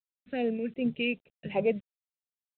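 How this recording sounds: a quantiser's noise floor 10-bit, dither none; phasing stages 2, 2.6 Hz, lowest notch 800–2000 Hz; random-step tremolo; µ-law

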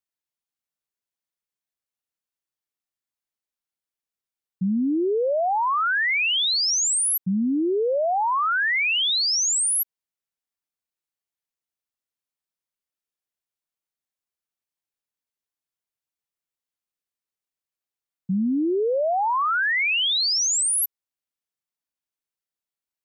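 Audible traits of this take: noise floor -92 dBFS; spectral tilt -2.5 dB/oct

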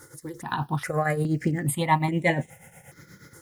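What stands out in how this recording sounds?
a quantiser's noise floor 10-bit, dither none; tremolo triangle 8.4 Hz, depth 75%; notches that jump at a steady rate 2.4 Hz 700–4700 Hz

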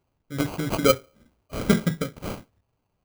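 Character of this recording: aliases and images of a low sample rate 1800 Hz, jitter 0%

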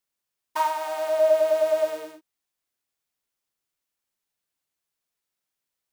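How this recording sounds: noise floor -85 dBFS; spectral tilt -5.5 dB/oct

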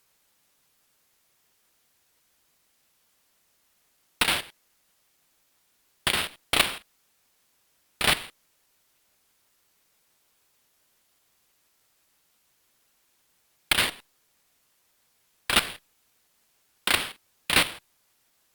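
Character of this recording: aliases and images of a low sample rate 6500 Hz, jitter 0%; tremolo saw up 5.9 Hz, depth 75%; a quantiser's noise floor 12-bit, dither triangular; Opus

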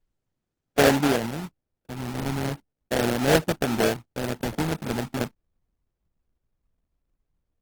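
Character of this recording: phasing stages 2, 0.36 Hz, lowest notch 520–1100 Hz; aliases and images of a low sample rate 1100 Hz, jitter 20%; Opus

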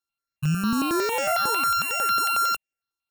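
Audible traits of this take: a buzz of ramps at a fixed pitch in blocks of 32 samples; notches that jump at a steady rate 11 Hz 590–4000 Hz

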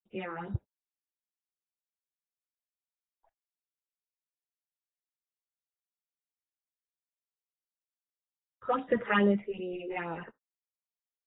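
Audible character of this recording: a quantiser's noise floor 12-bit, dither none; phasing stages 6, 2.4 Hz, lowest notch 180–2200 Hz; random-step tremolo 3.7 Hz; AAC

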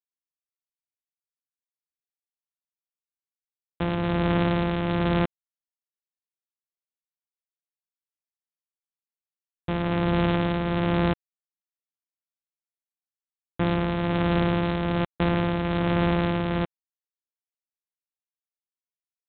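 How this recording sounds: a buzz of ramps at a fixed pitch in blocks of 256 samples; tremolo triangle 1.2 Hz, depth 45%; G.726

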